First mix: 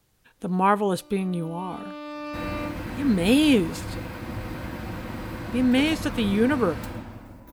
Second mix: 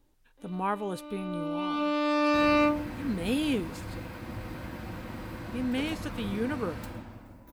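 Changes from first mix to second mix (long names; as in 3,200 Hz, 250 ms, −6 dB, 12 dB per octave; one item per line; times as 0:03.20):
speech −10.0 dB
first sound +9.5 dB
second sound −5.5 dB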